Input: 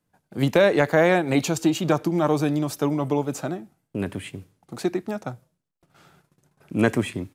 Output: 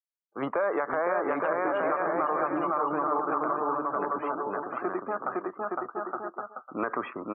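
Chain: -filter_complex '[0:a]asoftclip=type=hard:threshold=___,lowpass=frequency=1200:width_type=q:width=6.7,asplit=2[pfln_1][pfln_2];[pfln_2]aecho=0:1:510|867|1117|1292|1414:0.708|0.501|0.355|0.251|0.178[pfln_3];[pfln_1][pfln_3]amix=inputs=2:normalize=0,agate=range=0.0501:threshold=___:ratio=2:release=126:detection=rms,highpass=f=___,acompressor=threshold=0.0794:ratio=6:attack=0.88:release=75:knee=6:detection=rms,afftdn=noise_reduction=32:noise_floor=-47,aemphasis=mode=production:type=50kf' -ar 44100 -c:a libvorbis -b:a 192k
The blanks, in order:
0.355, 0.0251, 450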